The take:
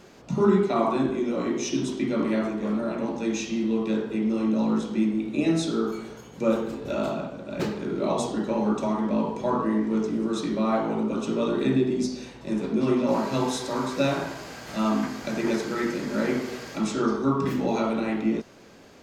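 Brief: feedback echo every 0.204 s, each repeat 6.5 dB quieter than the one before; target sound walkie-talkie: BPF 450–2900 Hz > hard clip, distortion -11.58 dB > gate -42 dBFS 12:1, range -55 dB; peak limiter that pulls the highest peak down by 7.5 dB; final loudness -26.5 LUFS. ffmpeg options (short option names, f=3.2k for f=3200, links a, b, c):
-af "alimiter=limit=-17dB:level=0:latency=1,highpass=450,lowpass=2.9k,aecho=1:1:204|408|612|816|1020|1224:0.473|0.222|0.105|0.0491|0.0231|0.0109,asoftclip=type=hard:threshold=-28.5dB,agate=range=-55dB:threshold=-42dB:ratio=12,volume=7dB"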